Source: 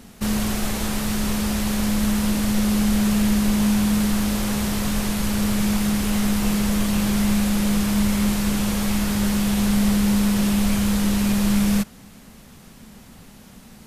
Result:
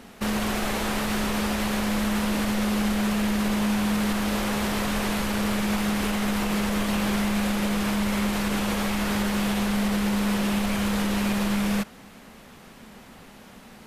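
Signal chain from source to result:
bass and treble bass −10 dB, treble −9 dB
brickwall limiter −20 dBFS, peak gain reduction 5 dB
level +3.5 dB

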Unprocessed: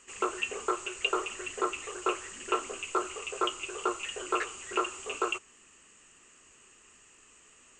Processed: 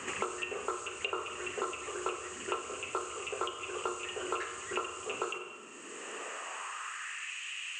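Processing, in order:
high-pass filter sweep 85 Hz → 2,700 Hz, 0:04.89–0:07.41
four-comb reverb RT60 0.88 s, combs from 30 ms, DRR 6 dB
multiband upward and downward compressor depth 100%
level −5.5 dB

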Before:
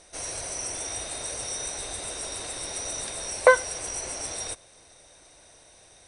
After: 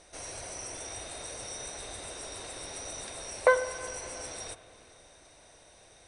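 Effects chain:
spring reverb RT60 2 s, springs 45/49/59 ms, chirp 55 ms, DRR 10.5 dB
in parallel at −2.5 dB: downward compressor, threshold −46 dBFS, peak gain reduction 31.5 dB
on the sum: high-shelf EQ 5,500 Hz −6 dB
level −6 dB

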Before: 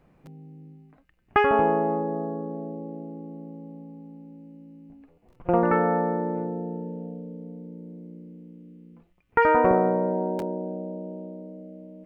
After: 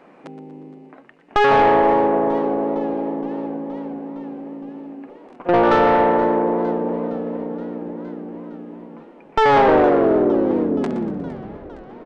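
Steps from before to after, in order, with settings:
turntable brake at the end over 2.80 s
low shelf with overshoot 160 Hz −14 dB, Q 1.5
in parallel at −1 dB: downward compressor, threshold −30 dBFS, peak gain reduction 15.5 dB
on the sum: mid-hump overdrive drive 19 dB, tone 1,900 Hz, clips at −2 dBFS
soft clipping −8 dBFS, distortion −18 dB
on a send: echo with shifted repeats 119 ms, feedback 46%, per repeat +100 Hz, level −13.5 dB
on the sum: downsampling to 22,050 Hz
feedback echo with a swinging delay time 466 ms, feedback 70%, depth 210 cents, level −19.5 dB

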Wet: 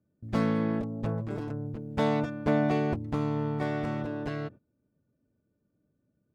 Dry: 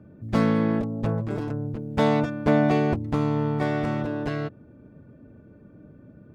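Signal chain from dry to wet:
noise gate −39 dBFS, range −21 dB
level −5.5 dB

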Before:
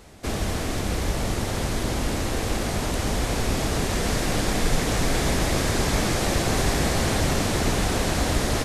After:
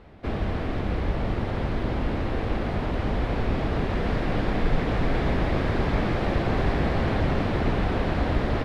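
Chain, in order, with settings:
high-frequency loss of the air 390 metres

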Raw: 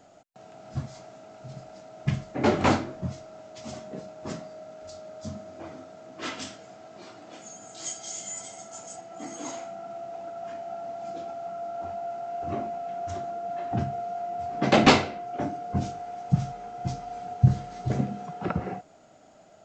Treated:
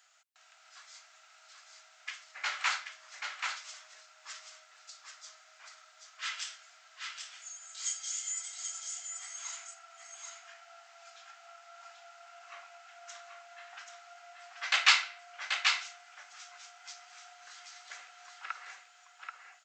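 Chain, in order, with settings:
high-pass filter 1,400 Hz 24 dB per octave
on a send: single-tap delay 783 ms −5 dB

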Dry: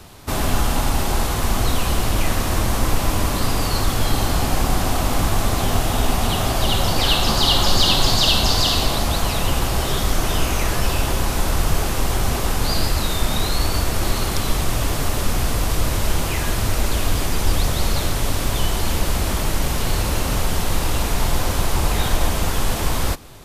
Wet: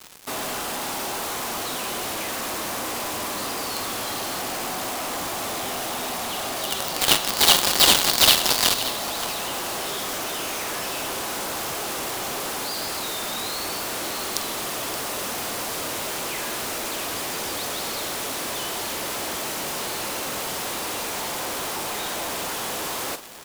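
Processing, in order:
high-pass filter 330 Hz 12 dB per octave
log-companded quantiser 2 bits
on a send: multi-tap delay 47/574 ms −13/−14.5 dB
on the sum: level −4 dB

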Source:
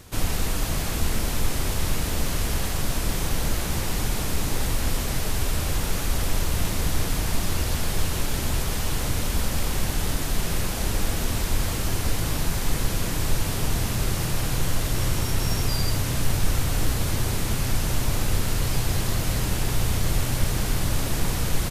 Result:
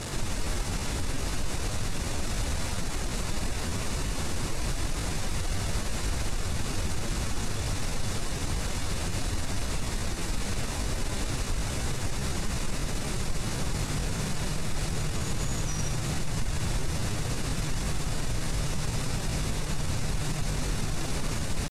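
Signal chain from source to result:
linear delta modulator 64 kbit/s, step −24 dBFS
low-pass filter 7,800 Hz 24 dB per octave
notch filter 2,600 Hz, Q 16
brickwall limiter −15.5 dBFS, peak gain reduction 6.5 dB
pitch shifter +3.5 semitones
level −4 dB

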